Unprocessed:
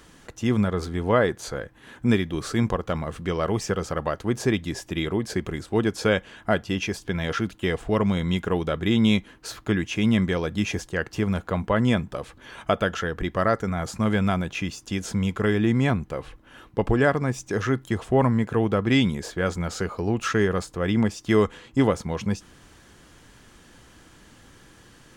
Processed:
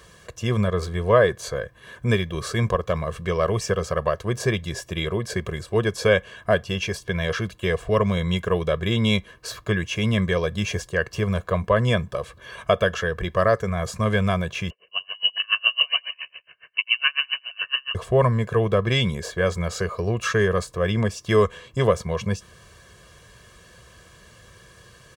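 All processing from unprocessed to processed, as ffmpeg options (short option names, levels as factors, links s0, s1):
-filter_complex "[0:a]asettb=1/sr,asplit=3[s0][s1][s2];[s0]atrim=end=14.704[s3];[s1]atrim=start=14.7:end=17.95,asetpts=PTS-STARTPTS,afade=t=in:d=0.004:c=qsin,afade=t=out:st=3.246:d=0.004:c=qsin,aecho=1:1:84|168|252|336|420|504:0.631|0.315|0.158|0.0789|0.0394|0.0197,atrim=end_sample=143325,lowpass=f=2600:t=q:w=0.5098,lowpass=f=2600:t=q:w=0.6013,lowpass=f=2600:t=q:w=0.9,lowpass=f=2600:t=q:w=2.563,afreqshift=-3100,aeval=exprs='val(0)*pow(10,-34*(0.5-0.5*cos(2*PI*7.2*n/s))/20)':c=same[s4];[s2]atrim=start=17.946[s5];[s3][s4]acrossfade=d=0.004:c1=hsin:c2=qsin[s6];[s6][s5]acrossfade=d=0.004:c1=qsin:c2=hsin,highpass=49,aecho=1:1:1.8:0.86"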